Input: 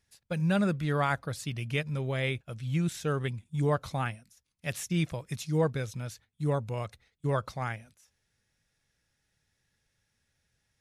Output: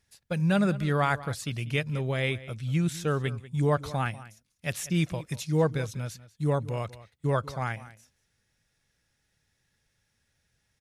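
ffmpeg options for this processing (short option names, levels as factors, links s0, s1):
-filter_complex "[0:a]asplit=2[s0][s1];[s1]adelay=192.4,volume=0.141,highshelf=f=4000:g=-4.33[s2];[s0][s2]amix=inputs=2:normalize=0,volume=1.33"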